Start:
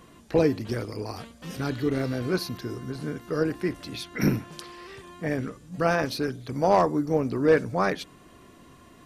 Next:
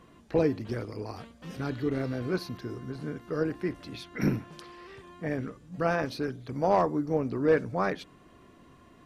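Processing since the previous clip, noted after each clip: high shelf 4900 Hz -10 dB; gain -3.5 dB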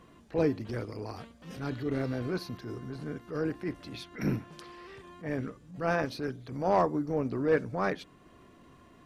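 transient shaper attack -8 dB, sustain -2 dB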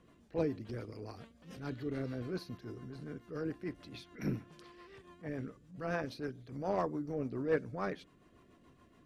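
rotary speaker horn 7 Hz; gain -5 dB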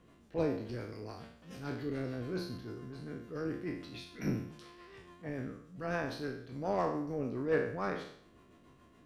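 spectral trails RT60 0.63 s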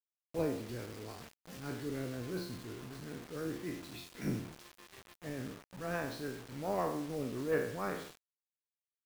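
requantised 8-bit, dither none; gain -2 dB

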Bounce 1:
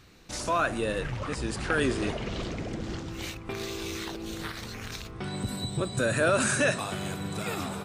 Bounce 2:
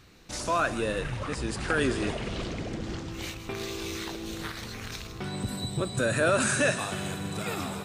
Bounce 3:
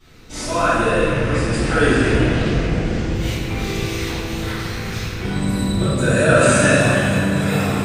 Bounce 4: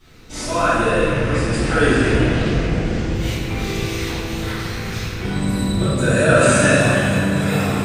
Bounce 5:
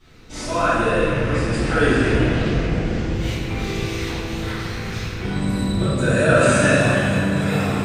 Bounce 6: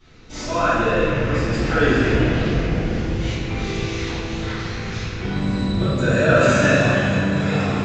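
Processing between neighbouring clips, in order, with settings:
thin delay 0.159 s, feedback 56%, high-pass 2000 Hz, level -10 dB
reverb RT60 2.8 s, pre-delay 4 ms, DRR -18 dB; gain -10 dB
requantised 12-bit, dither none
high shelf 8600 Hz -8 dB; gain -1.5 dB
downsampling 16000 Hz

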